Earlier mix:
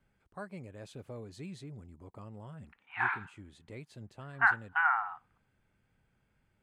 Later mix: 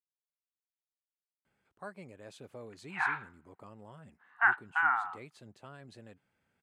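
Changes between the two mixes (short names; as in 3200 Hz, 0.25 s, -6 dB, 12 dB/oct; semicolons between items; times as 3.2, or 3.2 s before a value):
speech: entry +1.45 s; master: add HPF 280 Hz 6 dB/oct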